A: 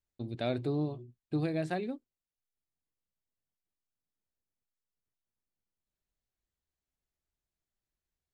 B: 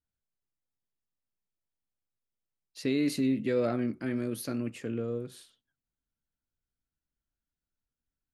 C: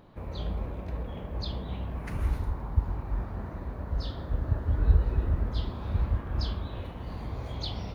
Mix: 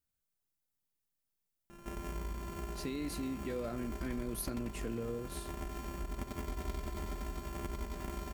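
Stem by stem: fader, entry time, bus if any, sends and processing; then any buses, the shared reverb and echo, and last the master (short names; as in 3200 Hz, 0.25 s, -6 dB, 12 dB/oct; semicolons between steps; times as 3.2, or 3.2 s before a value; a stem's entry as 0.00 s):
off
+2.5 dB, 0.00 s, no bus, no send, no echo send, vocal rider; high shelf 7700 Hz +10 dB
0.0 dB, 1.70 s, bus A, no send, echo send -9 dB, sample sorter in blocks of 128 samples; comb 5.1 ms, depth 65%
bus A: 0.0 dB, bell 4200 Hz -11.5 dB 0.52 oct; compressor 3:1, threshold -30 dBFS, peak gain reduction 12.5 dB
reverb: off
echo: feedback echo 92 ms, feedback 54%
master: compressor 2.5:1, threshold -41 dBFS, peak gain reduction 13.5 dB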